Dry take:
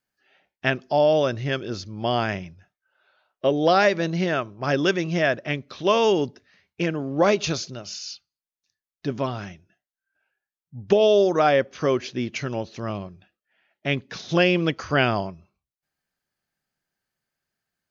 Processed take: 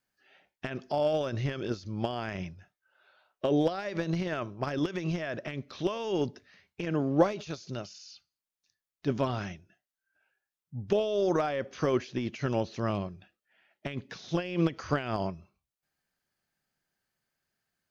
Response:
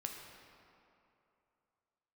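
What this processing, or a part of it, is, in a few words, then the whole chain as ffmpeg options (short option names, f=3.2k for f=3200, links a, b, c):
de-esser from a sidechain: -filter_complex "[0:a]asplit=2[a][b];[b]highpass=4.8k,apad=whole_len=789559[c];[a][c]sidechaincompress=threshold=-48dB:ratio=12:attack=1.6:release=46"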